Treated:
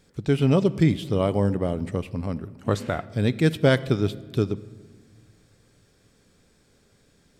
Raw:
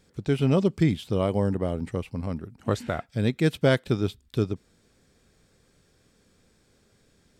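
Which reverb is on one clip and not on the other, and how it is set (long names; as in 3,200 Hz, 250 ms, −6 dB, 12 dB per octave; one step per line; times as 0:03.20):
rectangular room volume 1,800 cubic metres, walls mixed, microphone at 0.3 metres
level +2 dB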